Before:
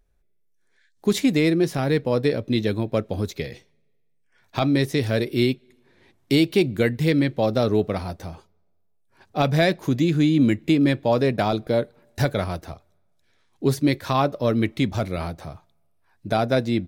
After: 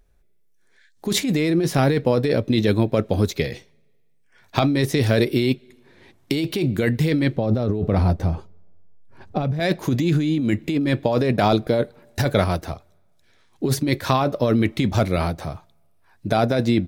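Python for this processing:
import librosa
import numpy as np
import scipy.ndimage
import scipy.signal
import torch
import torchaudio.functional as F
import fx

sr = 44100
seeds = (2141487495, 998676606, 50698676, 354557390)

y = fx.tilt_eq(x, sr, slope=-2.5, at=(7.36, 9.6))
y = fx.over_compress(y, sr, threshold_db=-22.0, ratio=-1.0)
y = F.gain(torch.from_numpy(y), 3.5).numpy()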